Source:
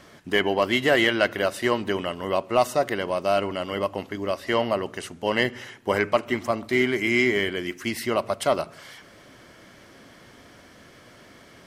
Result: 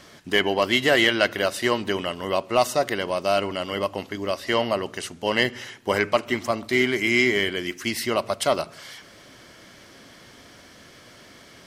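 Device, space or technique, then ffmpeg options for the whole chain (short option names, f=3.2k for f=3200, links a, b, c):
presence and air boost: -af "equalizer=f=4.7k:t=o:w=1.7:g=5.5,highshelf=f=9.7k:g=4"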